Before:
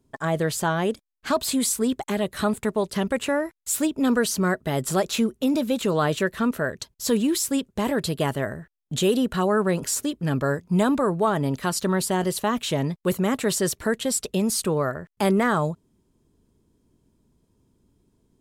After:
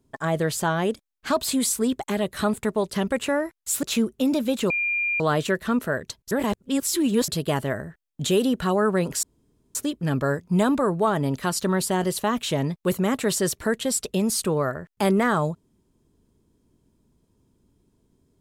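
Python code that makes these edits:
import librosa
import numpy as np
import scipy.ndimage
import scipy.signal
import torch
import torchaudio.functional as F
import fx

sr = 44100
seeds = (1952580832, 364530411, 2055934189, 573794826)

y = fx.edit(x, sr, fx.cut(start_s=3.83, length_s=1.22),
    fx.insert_tone(at_s=5.92, length_s=0.5, hz=2400.0, db=-21.5),
    fx.reverse_span(start_s=7.03, length_s=0.97),
    fx.insert_room_tone(at_s=9.95, length_s=0.52), tone=tone)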